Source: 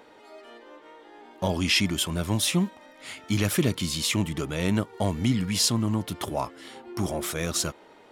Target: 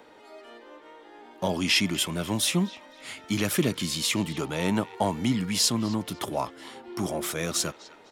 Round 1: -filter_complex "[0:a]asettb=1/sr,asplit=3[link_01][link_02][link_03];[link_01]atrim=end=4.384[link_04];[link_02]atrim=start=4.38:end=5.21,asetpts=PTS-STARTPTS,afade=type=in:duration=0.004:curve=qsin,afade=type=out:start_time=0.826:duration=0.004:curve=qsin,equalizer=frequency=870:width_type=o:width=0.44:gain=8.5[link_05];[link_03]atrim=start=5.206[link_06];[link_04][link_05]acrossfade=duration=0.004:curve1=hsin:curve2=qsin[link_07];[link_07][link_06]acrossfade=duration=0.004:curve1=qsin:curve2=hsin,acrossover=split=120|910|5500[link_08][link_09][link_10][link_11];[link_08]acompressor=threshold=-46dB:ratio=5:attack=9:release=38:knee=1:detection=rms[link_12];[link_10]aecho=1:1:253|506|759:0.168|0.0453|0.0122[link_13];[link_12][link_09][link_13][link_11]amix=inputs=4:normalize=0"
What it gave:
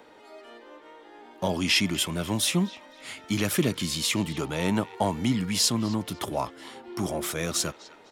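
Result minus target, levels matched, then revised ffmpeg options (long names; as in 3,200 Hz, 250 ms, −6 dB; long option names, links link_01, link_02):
downward compressor: peak gain reduction −7 dB
-filter_complex "[0:a]asettb=1/sr,asplit=3[link_01][link_02][link_03];[link_01]atrim=end=4.384[link_04];[link_02]atrim=start=4.38:end=5.21,asetpts=PTS-STARTPTS,afade=type=in:duration=0.004:curve=qsin,afade=type=out:start_time=0.826:duration=0.004:curve=qsin,equalizer=frequency=870:width_type=o:width=0.44:gain=8.5[link_05];[link_03]atrim=start=5.206[link_06];[link_04][link_05]acrossfade=duration=0.004:curve1=hsin:curve2=qsin[link_07];[link_07][link_06]acrossfade=duration=0.004:curve1=qsin:curve2=hsin,acrossover=split=120|910|5500[link_08][link_09][link_10][link_11];[link_08]acompressor=threshold=-54.5dB:ratio=5:attack=9:release=38:knee=1:detection=rms[link_12];[link_10]aecho=1:1:253|506|759:0.168|0.0453|0.0122[link_13];[link_12][link_09][link_13][link_11]amix=inputs=4:normalize=0"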